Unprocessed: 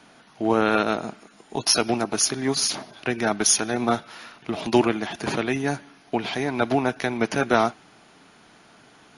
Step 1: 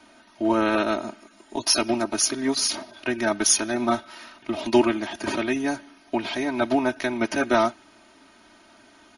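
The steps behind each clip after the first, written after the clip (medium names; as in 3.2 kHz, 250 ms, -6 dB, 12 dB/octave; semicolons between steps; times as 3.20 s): comb 3.2 ms, depth 98%; trim -3.5 dB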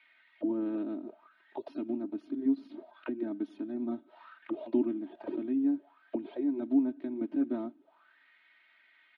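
auto-wah 280–2200 Hz, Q 6.8, down, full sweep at -22.5 dBFS; resonant high shelf 4.8 kHz -9.5 dB, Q 3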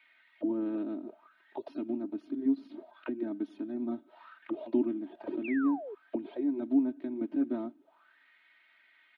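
painted sound fall, 5.44–5.95 s, 380–2800 Hz -41 dBFS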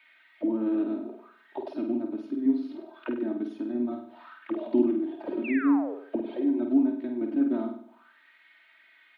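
peaking EQ 140 Hz -3.5 dB 0.84 oct; on a send: flutter echo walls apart 8.5 m, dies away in 0.56 s; on the sum: trim +4 dB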